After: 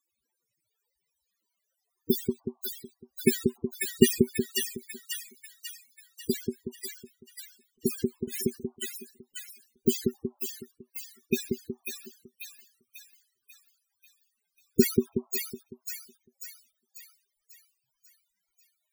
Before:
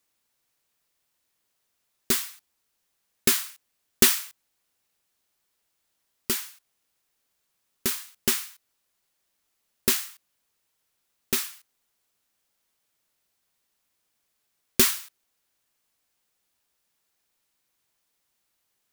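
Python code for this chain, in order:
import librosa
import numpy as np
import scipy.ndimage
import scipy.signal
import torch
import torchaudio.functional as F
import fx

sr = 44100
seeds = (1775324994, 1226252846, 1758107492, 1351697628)

y = fx.echo_split(x, sr, split_hz=650.0, low_ms=185, high_ms=542, feedback_pct=52, wet_db=-4)
y = fx.over_compress(y, sr, threshold_db=-28.0, ratio=-0.5, at=(7.98, 8.45), fade=0.02)
y = fx.spec_topn(y, sr, count=16)
y = y * 10.0 ** (6.5 / 20.0)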